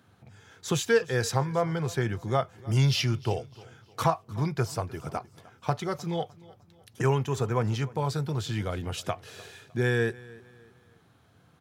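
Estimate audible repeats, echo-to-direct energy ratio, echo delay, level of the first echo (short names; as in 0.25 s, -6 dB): 2, -21.0 dB, 0.304 s, -21.5 dB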